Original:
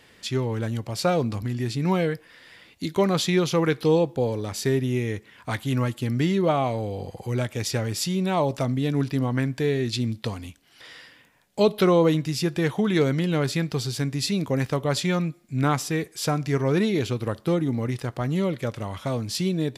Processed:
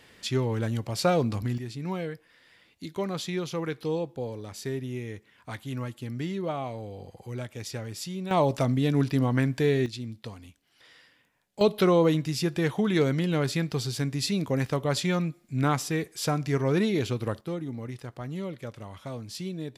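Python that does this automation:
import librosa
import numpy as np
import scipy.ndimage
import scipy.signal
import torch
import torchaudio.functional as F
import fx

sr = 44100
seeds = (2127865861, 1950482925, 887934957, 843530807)

y = fx.gain(x, sr, db=fx.steps((0.0, -1.0), (1.58, -9.5), (8.31, 0.0), (9.86, -10.5), (11.61, -2.5), (17.41, -10.0)))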